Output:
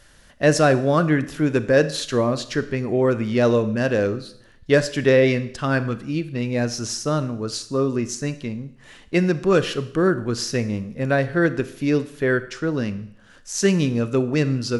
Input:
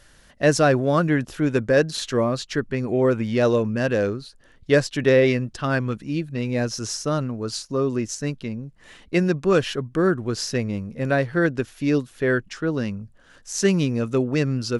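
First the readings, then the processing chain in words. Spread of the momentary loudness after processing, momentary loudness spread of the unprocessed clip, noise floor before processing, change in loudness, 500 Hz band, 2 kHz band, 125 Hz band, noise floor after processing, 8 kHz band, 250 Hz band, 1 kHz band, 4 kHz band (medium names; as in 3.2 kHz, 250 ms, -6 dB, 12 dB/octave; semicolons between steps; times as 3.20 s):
9 LU, 9 LU, -53 dBFS, +1.0 dB, +1.0 dB, +1.0 dB, +1.0 dB, -50 dBFS, +1.0 dB, +1.5 dB, +1.0 dB, +1.5 dB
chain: Schroeder reverb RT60 0.69 s, combs from 26 ms, DRR 12.5 dB; trim +1 dB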